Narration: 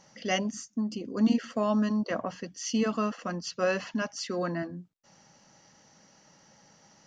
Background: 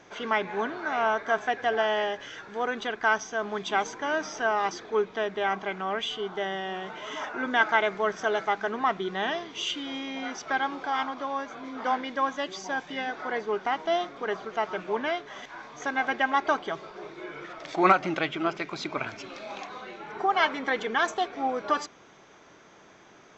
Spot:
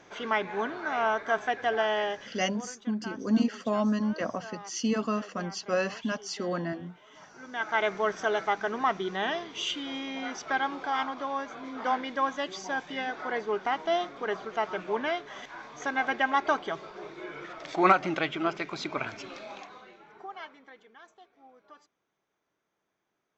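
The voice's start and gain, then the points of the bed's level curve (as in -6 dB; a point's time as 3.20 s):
2.10 s, -0.5 dB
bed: 2.12 s -1.5 dB
2.77 s -18 dB
7.37 s -18 dB
7.85 s -1 dB
19.32 s -1 dB
20.91 s -27.5 dB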